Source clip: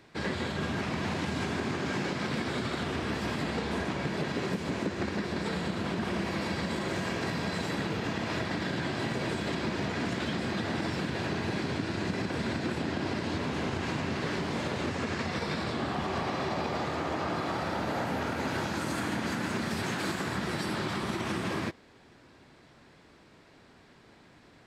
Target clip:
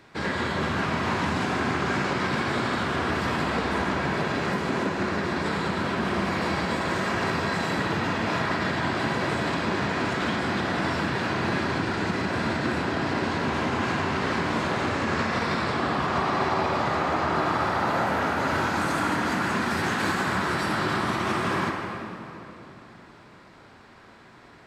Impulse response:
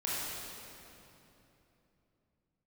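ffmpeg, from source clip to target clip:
-filter_complex "[0:a]asplit=2[s0][s1];[s1]equalizer=f=1200:t=o:w=1.9:g=10.5[s2];[1:a]atrim=start_sample=2205[s3];[s2][s3]afir=irnorm=-1:irlink=0,volume=0.422[s4];[s0][s4]amix=inputs=2:normalize=0"

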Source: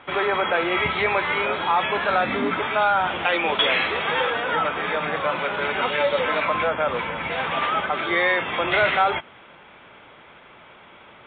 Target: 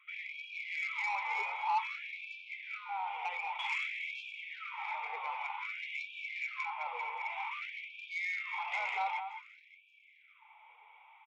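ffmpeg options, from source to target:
-filter_complex "[0:a]asplit=3[s0][s1][s2];[s0]bandpass=f=300:t=q:w=8,volume=1[s3];[s1]bandpass=f=870:t=q:w=8,volume=0.501[s4];[s2]bandpass=f=2240:t=q:w=8,volume=0.355[s5];[s3][s4][s5]amix=inputs=3:normalize=0,asplit=3[s6][s7][s8];[s6]afade=t=out:st=2.57:d=0.02[s9];[s7]acompressor=threshold=0.0178:ratio=6,afade=t=in:st=2.57:d=0.02,afade=t=out:st=3.61:d=0.02[s10];[s8]afade=t=in:st=3.61:d=0.02[s11];[s9][s10][s11]amix=inputs=3:normalize=0,asplit=2[s12][s13];[s13]aecho=0:1:210:0.355[s14];[s12][s14]amix=inputs=2:normalize=0,asoftclip=type=tanh:threshold=0.0422,asplit=2[s15][s16];[s16]aecho=0:1:574|1148:0.1|0.027[s17];[s15][s17]amix=inputs=2:normalize=0,afftfilt=real='re*gte(b*sr/1024,430*pow(2300/430,0.5+0.5*sin(2*PI*0.53*pts/sr)))':imag='im*gte(b*sr/1024,430*pow(2300/430,0.5+0.5*sin(2*PI*0.53*pts/sr)))':win_size=1024:overlap=0.75,volume=1.26"

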